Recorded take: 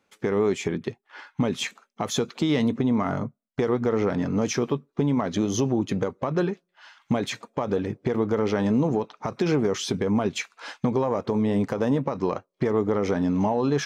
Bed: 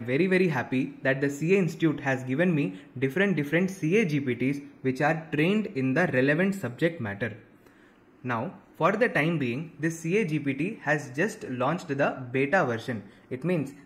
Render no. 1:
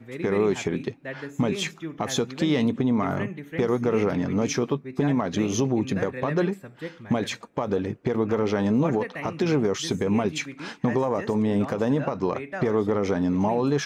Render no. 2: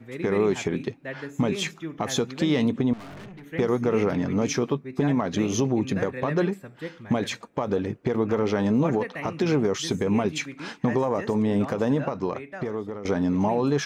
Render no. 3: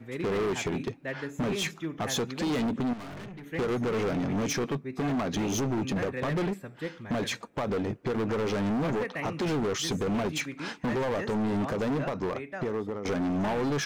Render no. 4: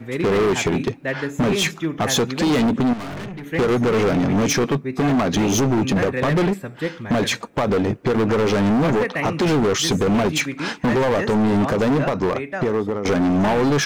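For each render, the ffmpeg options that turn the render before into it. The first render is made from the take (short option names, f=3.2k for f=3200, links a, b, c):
-filter_complex "[1:a]volume=-10.5dB[a];[0:a][a]amix=inputs=2:normalize=0"
-filter_complex "[0:a]asettb=1/sr,asplit=3[a][b][c];[a]atrim=end=2.934[d];[b]atrim=start=2.93:end=3.46,asetpts=PTS-STARTPTS,afade=t=in:d=0.004:c=qsin,afade=t=out:st=0.526:d=0.004:c=qsin,aeval=exprs='(tanh(100*val(0)+0.2)-tanh(0.2))/100':c=same[e];[c]atrim=start=3.456[f];[d][e]acrossfade=d=0.004:c1=hsin:c2=qsin[g];[g][f]acrossfade=d=0.004:c1=qsin:c2=hsin,asplit=2[h][i];[h]atrim=end=13.05,asetpts=PTS-STARTPTS,afade=t=out:st=11.92:d=1.13:silence=0.211349[j];[i]atrim=start=13.05,asetpts=PTS-STARTPTS,afade=t=in:d=0.004:c=hsin:silence=0.211349[k];[j][k]concat=n=2:v=0:a=1"
-af "volume=26dB,asoftclip=hard,volume=-26dB"
-af "volume=10.5dB"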